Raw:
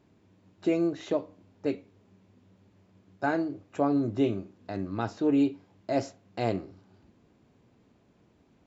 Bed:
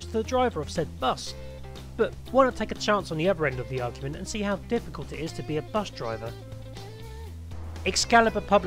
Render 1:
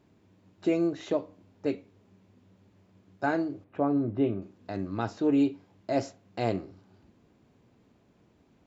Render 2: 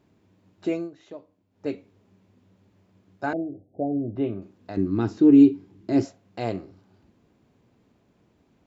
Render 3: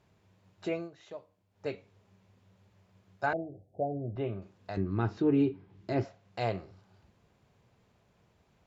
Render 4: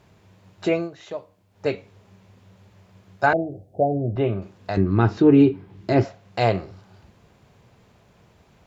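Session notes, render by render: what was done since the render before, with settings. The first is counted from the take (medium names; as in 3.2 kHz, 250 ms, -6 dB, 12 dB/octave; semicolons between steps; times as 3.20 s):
3.64–4.42 s: distance through air 410 m
0.72–1.67 s: dip -12.5 dB, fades 0.17 s; 3.33–4.16 s: steep low-pass 770 Hz 96 dB/octave; 4.77–6.05 s: resonant low shelf 450 Hz +7 dB, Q 3
low-pass that closes with the level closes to 2.5 kHz, closed at -20 dBFS; peaking EQ 280 Hz -14 dB 0.87 oct
trim +12 dB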